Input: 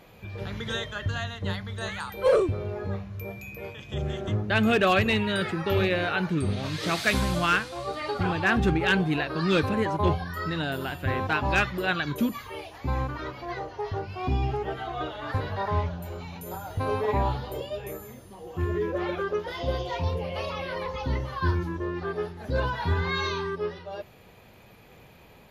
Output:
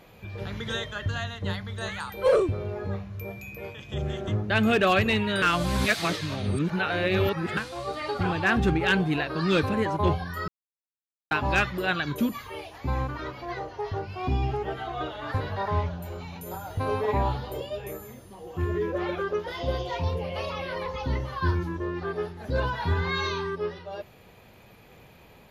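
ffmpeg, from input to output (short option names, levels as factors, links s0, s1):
-filter_complex "[0:a]asplit=5[s0][s1][s2][s3][s4];[s0]atrim=end=5.422[s5];[s1]atrim=start=5.418:end=7.572,asetpts=PTS-STARTPTS,areverse[s6];[s2]atrim=start=7.568:end=10.48,asetpts=PTS-STARTPTS,afade=t=out:st=2.908:d=0.004:c=hsin[s7];[s3]atrim=start=10.48:end=11.31,asetpts=PTS-STARTPTS,volume=0[s8];[s4]atrim=start=11.31,asetpts=PTS-STARTPTS,afade=t=in:d=0.004:c=hsin[s9];[s5][s6]acrossfade=d=0.004:c1=hsin:c2=hsin[s10];[s7][s8][s9]concat=n=3:v=0:a=1[s11];[s10][s11]acrossfade=d=0.004:c1=hsin:c2=hsin"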